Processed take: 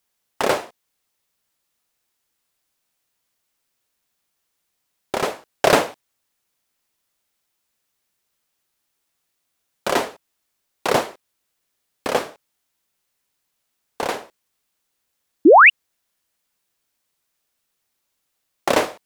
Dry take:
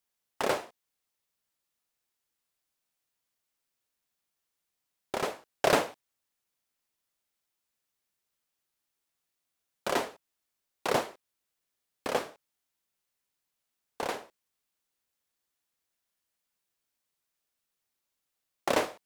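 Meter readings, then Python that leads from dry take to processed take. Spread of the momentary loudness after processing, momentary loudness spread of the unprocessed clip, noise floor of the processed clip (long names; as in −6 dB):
20 LU, 14 LU, −75 dBFS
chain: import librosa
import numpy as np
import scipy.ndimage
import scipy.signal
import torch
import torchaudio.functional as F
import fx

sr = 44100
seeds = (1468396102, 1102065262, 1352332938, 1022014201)

y = fx.spec_paint(x, sr, seeds[0], shape='rise', start_s=15.45, length_s=0.25, low_hz=270.0, high_hz=3000.0, level_db=-17.0)
y = y * librosa.db_to_amplitude(9.0)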